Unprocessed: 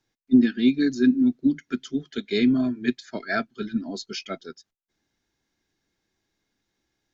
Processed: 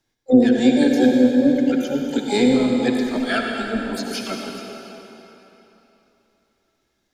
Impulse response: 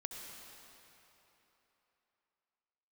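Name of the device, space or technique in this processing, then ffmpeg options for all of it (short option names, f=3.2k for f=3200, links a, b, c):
shimmer-style reverb: -filter_complex "[0:a]asplit=2[a][b];[b]asetrate=88200,aresample=44100,atempo=0.5,volume=-8dB[c];[a][c]amix=inputs=2:normalize=0[d];[1:a]atrim=start_sample=2205[e];[d][e]afir=irnorm=-1:irlink=0,asplit=3[f][g][h];[f]afade=t=out:st=3.05:d=0.02[i];[g]asubboost=boost=7:cutoff=56,afade=t=in:st=3.05:d=0.02,afade=t=out:st=3.95:d=0.02[j];[h]afade=t=in:st=3.95:d=0.02[k];[i][j][k]amix=inputs=3:normalize=0,volume=6.5dB"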